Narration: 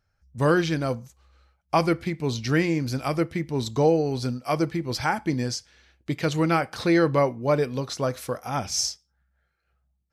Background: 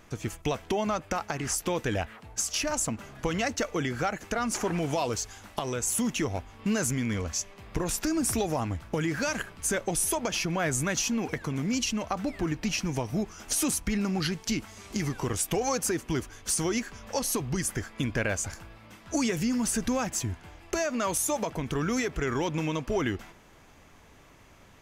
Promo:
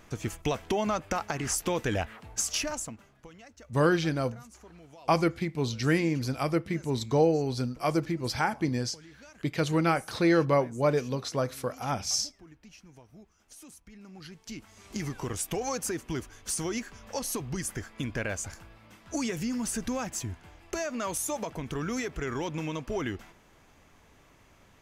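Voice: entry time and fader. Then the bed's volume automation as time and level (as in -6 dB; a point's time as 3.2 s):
3.35 s, -3.0 dB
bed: 2.56 s 0 dB
3.37 s -23 dB
13.92 s -23 dB
14.96 s -4 dB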